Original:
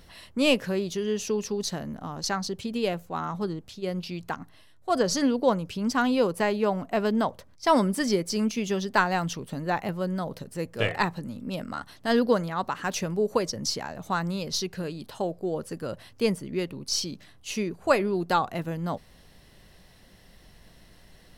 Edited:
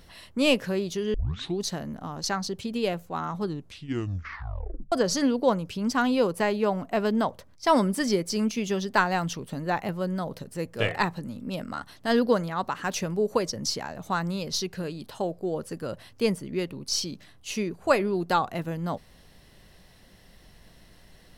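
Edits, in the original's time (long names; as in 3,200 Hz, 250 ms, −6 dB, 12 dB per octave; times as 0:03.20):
0:01.14: tape start 0.45 s
0:03.45: tape stop 1.47 s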